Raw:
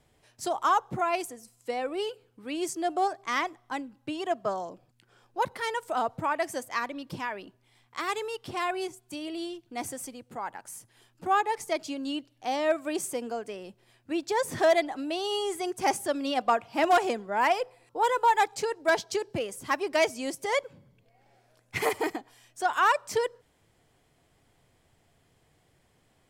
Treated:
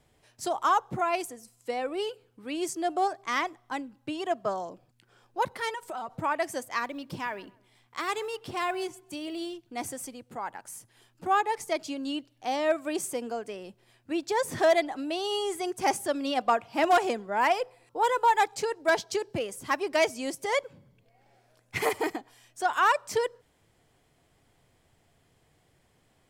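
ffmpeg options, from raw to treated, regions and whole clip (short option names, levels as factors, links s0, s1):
-filter_complex "[0:a]asettb=1/sr,asplit=3[s0][s1][s2];[s0]atrim=end=5.694[s3];[s1]atrim=start=5.69:end=6.15,asetpts=PTS-STARTPTS,afade=t=in:d=0.004:c=qsin,afade=t=out:st=0.456:d=0.004:c=qsin,aecho=1:1:5.3:0.51,atrim=end_sample=20286,acompressor=threshold=0.0224:ratio=6:attack=3.2:release=140:knee=1:detection=peak[s4];[s2]atrim=start=6.146[s5];[s3][s4]acrossfade=d=0.004:c1=hsin:c2=qsin[s6];[s6][s5]acrossfade=d=0.004:c1=qsin:c2=hsin,asettb=1/sr,asplit=3[s7][s8][s9];[s7]atrim=end=6.854[s10];[s8]atrim=start=6.85:end=9.54,asetpts=PTS-STARTPTS,afade=t=in:d=0.004:c=qsin,afade=t=out:st=2.686:d=0.004:c=qsin,acrusher=bits=9:mode=log:mix=0:aa=0.000001,asplit=2[s11][s12];[s12]adelay=130,lowpass=f=2000:p=1,volume=0.0891,asplit=2[s13][s14];[s14]adelay=130,lowpass=f=2000:p=1,volume=0.35,asplit=2[s15][s16];[s16]adelay=130,lowpass=f=2000:p=1,volume=0.35[s17];[s11][s13][s15][s17]amix=inputs=4:normalize=0,atrim=end_sample=118629[s18];[s9]atrim=start=9.536[s19];[s10][s18]acrossfade=d=0.004:c1=hsin:c2=qsin[s20];[s20][s19]acrossfade=d=0.004:c1=qsin:c2=hsin"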